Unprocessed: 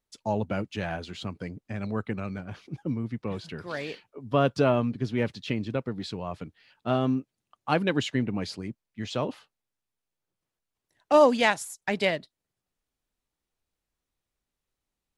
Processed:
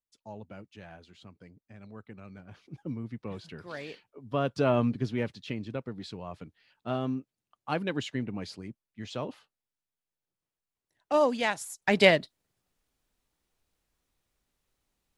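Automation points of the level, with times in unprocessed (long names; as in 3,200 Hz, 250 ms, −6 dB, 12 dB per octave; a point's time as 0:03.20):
0:02.06 −16 dB
0:02.83 −6 dB
0:04.51 −6 dB
0:04.87 +1.5 dB
0:05.33 −6 dB
0:11.48 −6 dB
0:12.03 +6 dB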